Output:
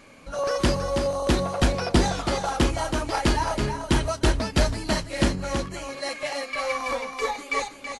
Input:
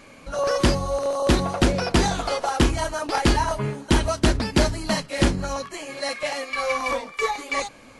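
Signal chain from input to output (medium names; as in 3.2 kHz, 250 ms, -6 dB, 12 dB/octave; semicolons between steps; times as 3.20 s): delay 326 ms -6.5 dB; trim -3 dB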